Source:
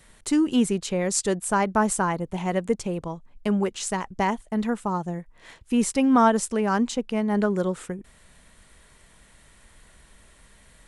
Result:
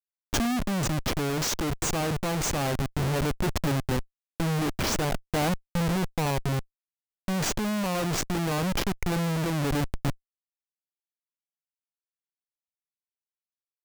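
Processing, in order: wide varispeed 0.786×; Schmitt trigger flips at -29.5 dBFS; vocal rider 0.5 s

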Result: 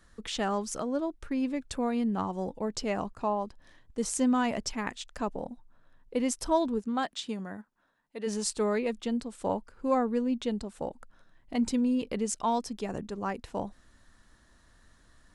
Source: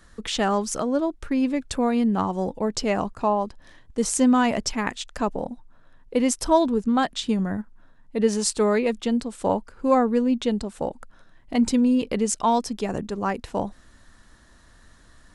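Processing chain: 6.79–8.26 HPF 210 Hz -> 760 Hz 6 dB/oct; gain -7.5 dB

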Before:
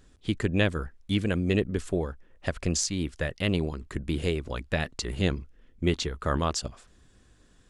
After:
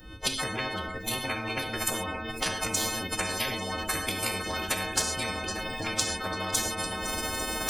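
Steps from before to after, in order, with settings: frequency quantiser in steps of 3 st; recorder AGC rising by 60 dB/s; spectral noise reduction 17 dB; bell 230 Hz +8.5 dB 0.26 oct; notch 2400 Hz, Q 6; swung echo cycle 0.847 s, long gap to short 1.5:1, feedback 61%, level -24 dB; formant-preserving pitch shift +3.5 st; non-linear reverb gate 0.15 s falling, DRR 7.5 dB; in parallel at 0 dB: compressor, threshold -28 dBFS, peak gain reduction 14.5 dB; on the sum: spectral compressor 10:1; gain -1.5 dB

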